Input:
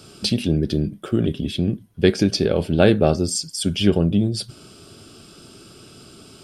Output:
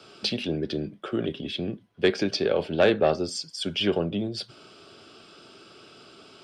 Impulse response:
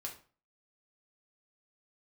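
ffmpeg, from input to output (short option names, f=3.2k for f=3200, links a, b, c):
-filter_complex "[0:a]acrossover=split=390 6600:gain=0.251 1 0.158[a][b][c];[a][b][c]amix=inputs=3:normalize=0,acrossover=split=110|4200[d][e][f];[e]acontrast=80[g];[d][g][f]amix=inputs=3:normalize=0,volume=-7dB"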